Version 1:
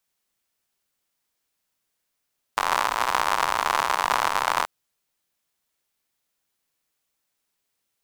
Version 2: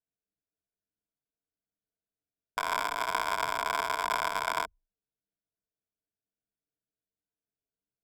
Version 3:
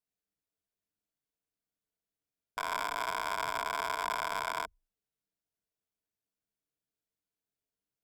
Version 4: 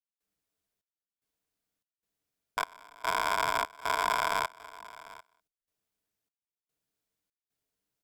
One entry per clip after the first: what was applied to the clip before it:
adaptive Wiener filter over 41 samples; EQ curve with evenly spaced ripples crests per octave 1.7, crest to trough 13 dB; level −9 dB
brickwall limiter −19.5 dBFS, peak gain reduction 8 dB
gate pattern ".xxx..xxx" 74 BPM −24 dB; single-tap delay 746 ms −19 dB; level +5.5 dB

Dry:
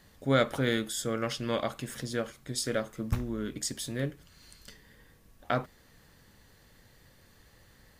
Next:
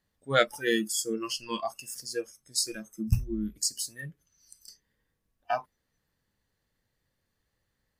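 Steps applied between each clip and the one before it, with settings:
noise reduction from a noise print of the clip's start 25 dB
level +5.5 dB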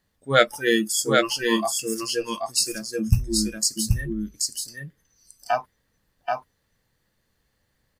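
single-tap delay 781 ms −3 dB
level +6 dB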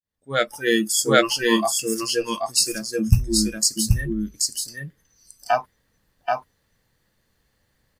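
fade in at the beginning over 0.94 s
level +3 dB

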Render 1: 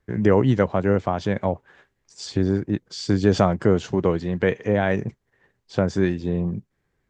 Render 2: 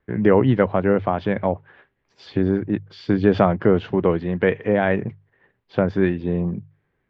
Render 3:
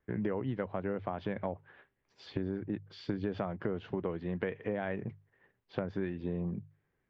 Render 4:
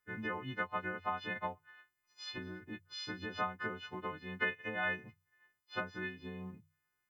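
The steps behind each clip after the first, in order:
low-pass filter 3,200 Hz 24 dB per octave; low-shelf EQ 74 Hz −6.5 dB; mains-hum notches 50/100/150 Hz; level +2.5 dB
downward compressor 6 to 1, threshold −23 dBFS, peak gain reduction 12.5 dB; level −8 dB
every partial snapped to a pitch grid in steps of 3 semitones; low shelf with overshoot 790 Hz −8 dB, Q 1.5; expander for the loud parts 1.5 to 1, over −55 dBFS; level +4 dB

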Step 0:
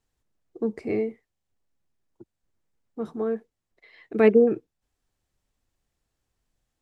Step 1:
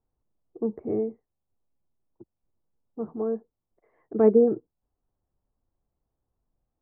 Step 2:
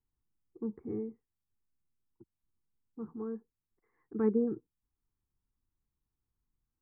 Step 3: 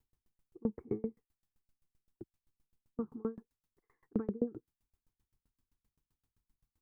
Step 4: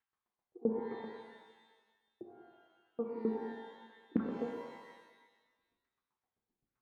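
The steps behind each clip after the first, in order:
low-pass filter 1,100 Hz 24 dB per octave; level −1 dB
phaser with its sweep stopped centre 1,500 Hz, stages 4; level −5 dB
downward compressor 2.5 to 1, threshold −37 dBFS, peak gain reduction 10 dB; tremolo with a ramp in dB decaying 7.7 Hz, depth 34 dB; level +11.5 dB
auto-filter band-pass saw down 1.2 Hz 290–1,700 Hz; reverb with rising layers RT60 1.3 s, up +12 semitones, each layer −8 dB, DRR 1 dB; level +6.5 dB

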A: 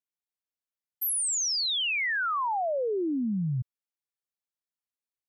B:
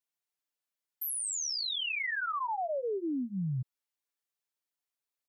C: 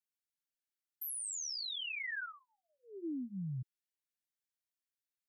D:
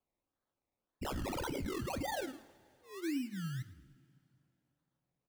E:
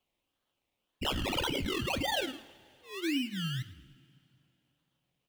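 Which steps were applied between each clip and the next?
low-shelf EQ 230 Hz −9 dB; comb filter 6.9 ms, depth 93%; brickwall limiter −29 dBFS, peak gain reduction 9.5 dB
elliptic band-stop filter 350–1,500 Hz, stop band 40 dB; level −6 dB
sample-and-hold swept by an LFO 23×, swing 60% 1.8 Hz; echo with shifted repeats 108 ms, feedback 36%, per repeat −32 Hz, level −18 dB; coupled-rooms reverb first 0.23 s, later 2.7 s, from −19 dB, DRR 11 dB; level +2 dB
parametric band 3,000 Hz +14.5 dB 0.67 octaves; level +4 dB

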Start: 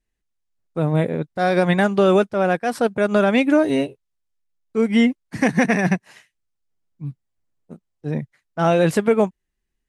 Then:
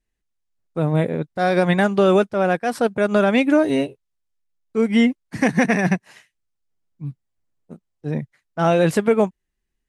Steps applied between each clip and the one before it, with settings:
no processing that can be heard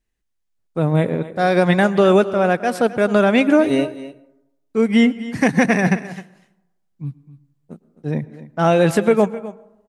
single-tap delay 260 ms −16 dB
convolution reverb RT60 0.90 s, pre-delay 97 ms, DRR 19.5 dB
level +2 dB

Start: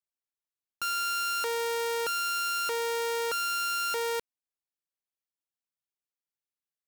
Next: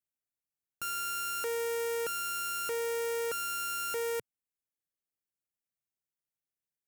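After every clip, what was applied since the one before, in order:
octave-band graphic EQ 125/1,000/4,000 Hz +5/−9/−11 dB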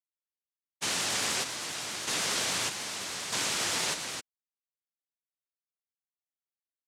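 three sine waves on the formant tracks
cochlear-implant simulation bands 1
pitch vibrato 10 Hz 61 cents
level +1.5 dB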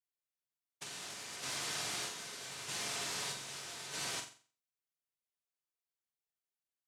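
compressor whose output falls as the input rises −35 dBFS, ratio −0.5
tuned comb filter 140 Hz, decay 0.23 s, harmonics odd, mix 70%
on a send: flutter between parallel walls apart 7.6 metres, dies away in 0.4 s
on the sum: level +1 dB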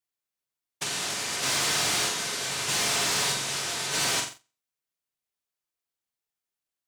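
leveller curve on the samples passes 2
level +8 dB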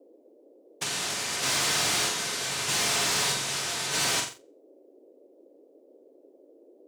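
noise in a band 280–570 Hz −56 dBFS

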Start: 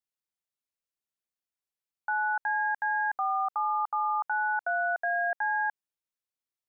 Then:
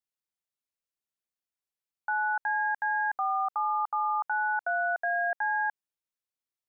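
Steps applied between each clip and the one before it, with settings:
no processing that can be heard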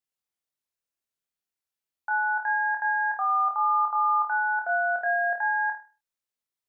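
flutter between parallel walls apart 4.4 metres, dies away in 0.33 s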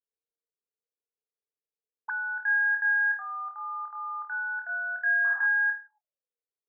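low-shelf EQ 480 Hz +7.5 dB
envelope filter 450–1,700 Hz, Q 11, up, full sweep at −28.5 dBFS
sound drawn into the spectrogram noise, 0:05.24–0:05.47, 760–1,700 Hz −50 dBFS
level +5.5 dB

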